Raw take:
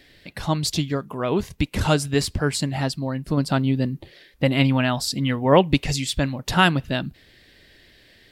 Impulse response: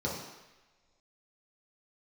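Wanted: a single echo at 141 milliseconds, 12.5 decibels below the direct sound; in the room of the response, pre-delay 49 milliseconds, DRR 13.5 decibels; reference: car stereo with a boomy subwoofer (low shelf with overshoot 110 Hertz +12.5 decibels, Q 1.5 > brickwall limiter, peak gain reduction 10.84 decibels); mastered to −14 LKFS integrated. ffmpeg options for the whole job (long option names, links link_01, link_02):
-filter_complex "[0:a]aecho=1:1:141:0.237,asplit=2[link_01][link_02];[1:a]atrim=start_sample=2205,adelay=49[link_03];[link_02][link_03]afir=irnorm=-1:irlink=0,volume=-20dB[link_04];[link_01][link_04]amix=inputs=2:normalize=0,lowshelf=frequency=110:width_type=q:width=1.5:gain=12.5,volume=9.5dB,alimiter=limit=-1.5dB:level=0:latency=1"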